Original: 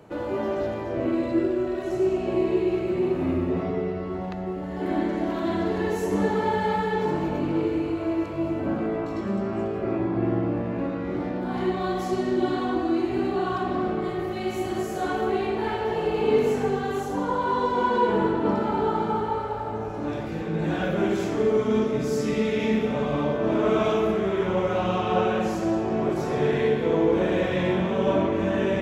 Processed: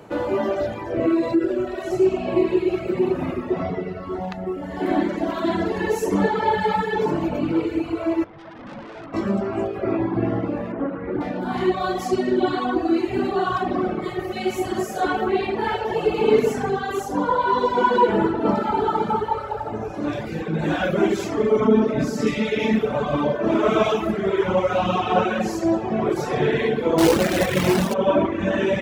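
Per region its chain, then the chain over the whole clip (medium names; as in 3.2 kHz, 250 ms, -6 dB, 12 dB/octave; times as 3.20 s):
1.03–1.51 s: band-stop 3.1 kHz, Q 29 + comb 6.2 ms, depth 54% + compression 5:1, threshold -19 dBFS
8.24–9.14 s: Gaussian low-pass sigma 3.6 samples + valve stage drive 37 dB, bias 0.35
10.72–11.21 s: low-pass 1.7 kHz + loudspeaker Doppler distortion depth 0.21 ms
21.60–22.27 s: treble shelf 3.3 kHz -10 dB + comb 4.5 ms, depth 33% + level flattener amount 50%
26.98–27.94 s: bass shelf 190 Hz +4.5 dB + companded quantiser 4-bit + loudspeaker Doppler distortion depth 0.31 ms
whole clip: de-hum 87.73 Hz, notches 9; reverb removal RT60 1.7 s; bass shelf 200 Hz -4 dB; trim +7.5 dB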